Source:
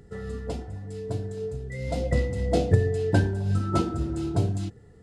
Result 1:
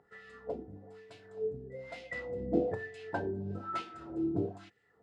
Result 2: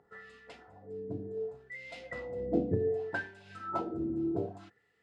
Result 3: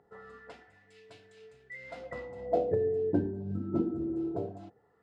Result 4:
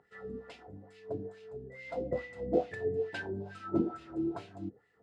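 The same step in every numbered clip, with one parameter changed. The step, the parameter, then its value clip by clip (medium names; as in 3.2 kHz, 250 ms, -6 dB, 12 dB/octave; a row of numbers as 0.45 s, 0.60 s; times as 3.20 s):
wah-wah, rate: 1.1 Hz, 0.66 Hz, 0.21 Hz, 2.3 Hz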